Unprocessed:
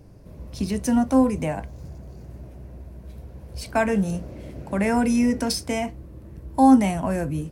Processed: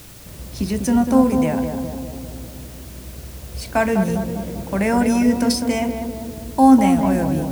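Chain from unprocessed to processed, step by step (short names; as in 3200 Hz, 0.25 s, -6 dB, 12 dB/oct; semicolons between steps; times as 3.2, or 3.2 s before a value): in parallel at -7.5 dB: requantised 6-bit, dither triangular; on the sum: tape echo 0.199 s, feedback 71%, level -4 dB, low-pass 1000 Hz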